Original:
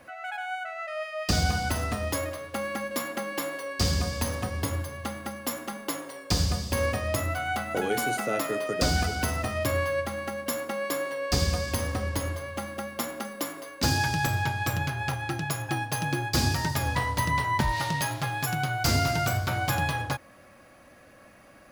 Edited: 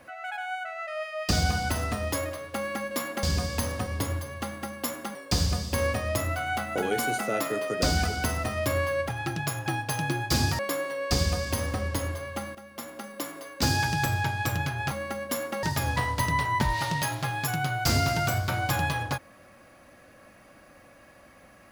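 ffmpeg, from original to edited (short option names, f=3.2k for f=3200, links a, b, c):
-filter_complex "[0:a]asplit=8[a][b][c][d][e][f][g][h];[a]atrim=end=3.232[i];[b]atrim=start=3.858:end=5.782[j];[c]atrim=start=6.138:end=10.082[k];[d]atrim=start=15.118:end=16.622[l];[e]atrim=start=10.798:end=12.76,asetpts=PTS-STARTPTS,afade=t=out:st=1.958:d=0.004:c=hsin:silence=0.211349[m];[f]atrim=start=12.76:end=15.122,asetpts=PTS-STARTPTS,afade=t=in:d=0.97:silence=0.211349[n];[g]atrim=start=10.078:end=10.802[o];[h]atrim=start=16.618[p];[i][j]acrossfade=d=0.004:c1=hsin:c2=hsin[q];[q][k]acrossfade=d=0.004:c1=hsin:c2=hsin[r];[r][l]acrossfade=d=0.004:c1=hsin:c2=hsin[s];[m][n]concat=n=2:v=0:a=1[t];[s][t]acrossfade=d=0.004:c1=hsin:c2=hsin[u];[u][o]acrossfade=d=0.004:c1=hsin:c2=hsin[v];[v][p]acrossfade=d=0.004:c1=hsin:c2=hsin"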